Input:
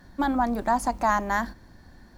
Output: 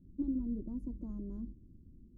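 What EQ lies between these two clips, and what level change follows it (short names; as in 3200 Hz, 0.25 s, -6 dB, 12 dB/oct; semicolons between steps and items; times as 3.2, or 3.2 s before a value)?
inverse Chebyshev low-pass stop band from 700 Hz, stop band 40 dB; dynamic EQ 220 Hz, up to -3 dB, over -38 dBFS; -5.5 dB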